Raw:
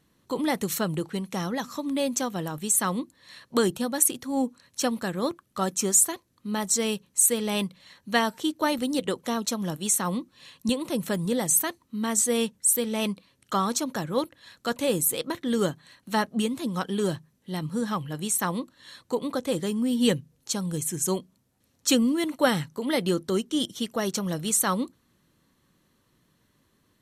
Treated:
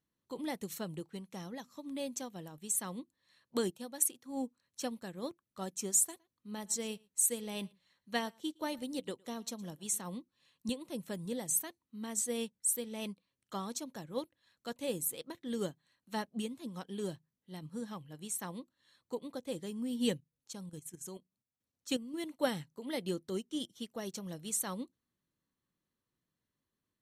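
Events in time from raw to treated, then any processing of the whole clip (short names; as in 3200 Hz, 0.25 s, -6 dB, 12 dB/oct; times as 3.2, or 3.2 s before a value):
3.7–4.26 HPF 240 Hz 6 dB/oct
5.97–10.01 echo 0.113 s -19.5 dB
20.17–22.14 level quantiser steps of 10 dB
whole clip: dynamic EQ 1300 Hz, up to -6 dB, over -45 dBFS, Q 1.9; upward expander 1.5:1, over -44 dBFS; gain -8 dB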